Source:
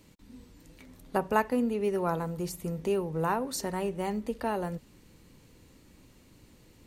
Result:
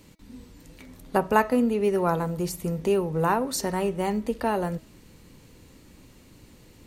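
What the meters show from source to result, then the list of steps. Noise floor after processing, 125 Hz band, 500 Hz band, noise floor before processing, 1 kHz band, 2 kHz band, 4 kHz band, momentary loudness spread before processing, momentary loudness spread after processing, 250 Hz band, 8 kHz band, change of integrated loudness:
-53 dBFS, +5.5 dB, +5.5 dB, -59 dBFS, +5.5 dB, +5.5 dB, +5.5 dB, 7 LU, 7 LU, +5.5 dB, +5.5 dB, +5.5 dB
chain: de-hum 322.5 Hz, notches 20; trim +5.5 dB

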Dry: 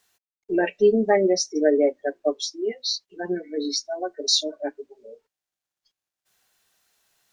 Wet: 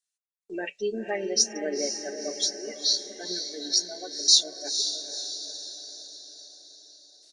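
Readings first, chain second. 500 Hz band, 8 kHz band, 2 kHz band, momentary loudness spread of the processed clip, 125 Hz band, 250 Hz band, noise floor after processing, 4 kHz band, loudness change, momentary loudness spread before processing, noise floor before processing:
-11.5 dB, +6.0 dB, -6.0 dB, 20 LU, under -10 dB, -11.5 dB, under -85 dBFS, +3.5 dB, -2.5 dB, 12 LU, under -85 dBFS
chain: pre-emphasis filter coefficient 0.9; gate with hold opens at -55 dBFS; dynamic bell 1.2 kHz, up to -5 dB, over -52 dBFS, Q 1.2; on a send: echo that smears into a reverb 484 ms, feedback 54%, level -7.5 dB; on the sum: resampled via 22.05 kHz; trim +7 dB

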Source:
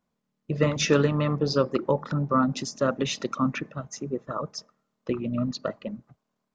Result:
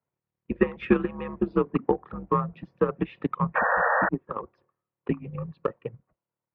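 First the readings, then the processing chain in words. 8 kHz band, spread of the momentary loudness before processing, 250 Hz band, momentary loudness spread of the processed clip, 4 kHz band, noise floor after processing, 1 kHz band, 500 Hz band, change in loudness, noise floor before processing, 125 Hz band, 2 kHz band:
no reading, 15 LU, -1.5 dB, 14 LU, under -15 dB, under -85 dBFS, +3.5 dB, -1.0 dB, -0.5 dB, -80 dBFS, -5.0 dB, +6.5 dB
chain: mistuned SSB -92 Hz 220–2800 Hz; transient shaper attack +11 dB, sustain -3 dB; painted sound noise, 3.55–4.09 s, 450–1900 Hz -16 dBFS; trim -7 dB

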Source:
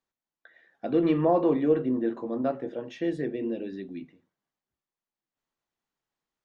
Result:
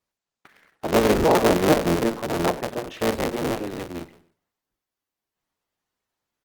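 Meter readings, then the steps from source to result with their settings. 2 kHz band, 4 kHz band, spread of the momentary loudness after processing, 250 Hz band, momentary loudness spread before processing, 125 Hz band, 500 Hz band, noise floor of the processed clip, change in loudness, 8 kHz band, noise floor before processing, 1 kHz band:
+15.0 dB, +18.5 dB, 15 LU, +2.5 dB, 15 LU, +7.5 dB, +5.5 dB, under -85 dBFS, +5.0 dB, no reading, under -85 dBFS, +9.5 dB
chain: cycle switcher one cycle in 3, inverted; feedback delay 96 ms, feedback 44%, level -20 dB; trim +5 dB; Opus 20 kbps 48 kHz

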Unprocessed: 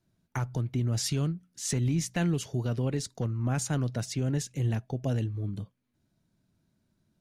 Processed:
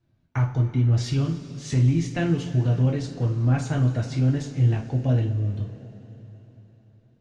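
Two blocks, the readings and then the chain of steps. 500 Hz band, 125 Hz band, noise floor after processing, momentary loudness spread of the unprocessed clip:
+4.0 dB, +8.5 dB, -63 dBFS, 7 LU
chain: low-pass 3.9 kHz 12 dB/octave; bass shelf 180 Hz +4 dB; two-slope reverb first 0.33 s, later 4 s, from -18 dB, DRR -1.5 dB

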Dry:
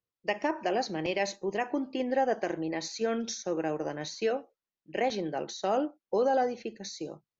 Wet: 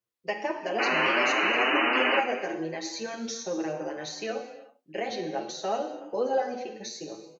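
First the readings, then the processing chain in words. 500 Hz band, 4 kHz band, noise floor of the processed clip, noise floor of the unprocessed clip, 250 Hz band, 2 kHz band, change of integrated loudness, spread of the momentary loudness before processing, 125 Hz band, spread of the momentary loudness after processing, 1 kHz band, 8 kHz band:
0.0 dB, +8.0 dB, -65 dBFS, under -85 dBFS, -0.5 dB, +11.0 dB, +3.5 dB, 8 LU, -2.5 dB, 14 LU, +3.0 dB, no reading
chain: bass shelf 140 Hz -9.5 dB; in parallel at -2.5 dB: compression, threshold -36 dBFS, peak gain reduction 12.5 dB; on the sum: painted sound noise, 0.78–2.20 s, 220–3000 Hz -23 dBFS; gated-style reverb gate 410 ms falling, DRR 5 dB; endless flanger 7 ms +2.8 Hz

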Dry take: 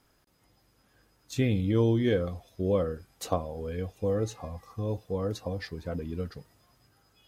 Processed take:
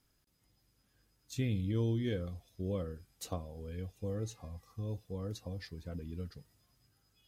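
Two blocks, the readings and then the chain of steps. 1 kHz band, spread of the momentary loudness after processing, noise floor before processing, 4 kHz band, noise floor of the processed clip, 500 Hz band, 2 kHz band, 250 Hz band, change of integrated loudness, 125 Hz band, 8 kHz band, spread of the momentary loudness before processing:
-13.5 dB, 12 LU, -68 dBFS, -7.0 dB, -75 dBFS, -12.0 dB, -10.0 dB, -8.5 dB, -8.5 dB, -6.0 dB, -5.0 dB, 12 LU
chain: peaking EQ 790 Hz -9.5 dB 3 oct; trim -4.5 dB

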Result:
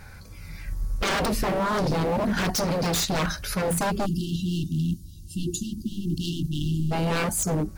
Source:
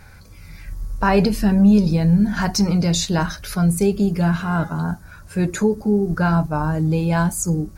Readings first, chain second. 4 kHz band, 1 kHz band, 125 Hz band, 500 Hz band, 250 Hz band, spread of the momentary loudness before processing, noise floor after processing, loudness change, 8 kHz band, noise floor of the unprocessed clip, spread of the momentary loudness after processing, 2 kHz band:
-1.0 dB, -4.0 dB, -8.0 dB, -5.5 dB, -10.0 dB, 10 LU, -43 dBFS, -7.5 dB, -2.0 dB, -43 dBFS, 10 LU, -3.5 dB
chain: wavefolder -19.5 dBFS; spectral selection erased 4.06–6.91 s, 370–2700 Hz

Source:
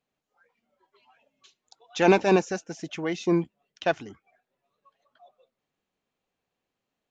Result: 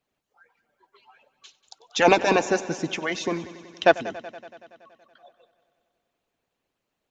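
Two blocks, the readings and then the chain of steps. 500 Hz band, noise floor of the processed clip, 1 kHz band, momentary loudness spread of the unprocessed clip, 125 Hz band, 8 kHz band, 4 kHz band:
+2.0 dB, -81 dBFS, +5.0 dB, 16 LU, -3.5 dB, no reading, +7.0 dB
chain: harmonic-percussive split harmonic -17 dB; multi-head delay 94 ms, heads first and second, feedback 65%, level -20 dB; trim +8 dB

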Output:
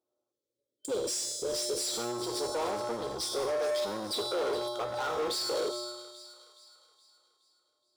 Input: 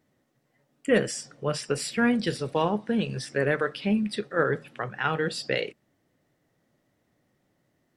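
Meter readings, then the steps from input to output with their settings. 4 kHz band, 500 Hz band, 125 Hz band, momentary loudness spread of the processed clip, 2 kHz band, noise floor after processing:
+2.0 dB, -3.5 dB, -18.0 dB, 9 LU, -14.0 dB, under -85 dBFS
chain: octave divider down 1 oct, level -4 dB; peaking EQ 2.2 kHz -11.5 dB 1.3 oct; waveshaping leveller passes 5; FFT band-reject 1.5–3.1 kHz; in parallel at -3 dB: compressor with a negative ratio -23 dBFS; on the sum: time-frequency box 0.32–1.88 s, 600–2200 Hz -27 dB; feedback comb 120 Hz, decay 1.4 s, harmonics odd, mix 90%; peak limiter -29 dBFS, peak gain reduction 10 dB; overdrive pedal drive 8 dB, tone 5.1 kHz, clips at -29 dBFS; on a send: feedback echo behind a high-pass 420 ms, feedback 47%, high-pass 1.7 kHz, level -12 dB; on the sum: hard clipper -36 dBFS, distortion -14 dB; resonant low shelf 250 Hz -13.5 dB, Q 1.5; trim +6.5 dB

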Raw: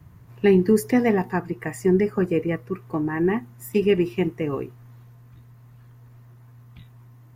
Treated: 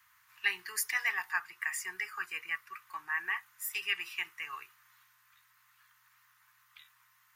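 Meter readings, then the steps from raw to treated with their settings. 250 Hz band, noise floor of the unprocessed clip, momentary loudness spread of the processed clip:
under -40 dB, -49 dBFS, 11 LU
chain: inverse Chebyshev high-pass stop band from 610 Hz, stop band 40 dB; trim +1.5 dB

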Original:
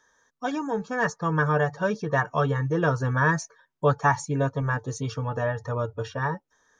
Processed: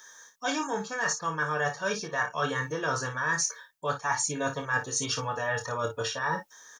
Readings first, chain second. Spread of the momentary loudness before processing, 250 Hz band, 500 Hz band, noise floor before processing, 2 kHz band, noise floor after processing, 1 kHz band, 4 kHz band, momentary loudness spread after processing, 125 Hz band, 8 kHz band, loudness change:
8 LU, -8.0 dB, -6.0 dB, -74 dBFS, -1.0 dB, -57 dBFS, -3.5 dB, +8.5 dB, 4 LU, -12.5 dB, +10.5 dB, -3.5 dB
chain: tilt EQ +4 dB/octave; reverse; compression 5:1, threshold -36 dBFS, peak gain reduction 17.5 dB; reverse; early reflections 26 ms -6.5 dB, 55 ms -10 dB; trim +7.5 dB

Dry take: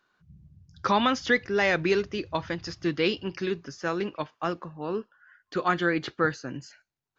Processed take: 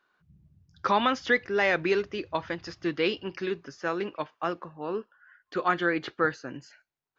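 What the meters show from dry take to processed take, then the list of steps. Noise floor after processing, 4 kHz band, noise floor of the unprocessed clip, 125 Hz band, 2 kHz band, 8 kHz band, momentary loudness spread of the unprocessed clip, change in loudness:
-85 dBFS, -2.5 dB, -85 dBFS, -5.5 dB, -0.5 dB, no reading, 11 LU, -1.0 dB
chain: tone controls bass -7 dB, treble -7 dB

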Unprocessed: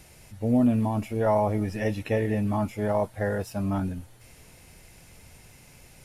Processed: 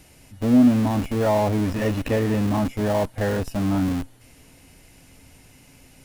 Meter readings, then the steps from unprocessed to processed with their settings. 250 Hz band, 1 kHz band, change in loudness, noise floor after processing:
+6.5 dB, +2.5 dB, +4.5 dB, -52 dBFS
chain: small resonant body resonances 270/2900 Hz, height 12 dB, ringing for 95 ms; in parallel at -5 dB: Schmitt trigger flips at -32.5 dBFS

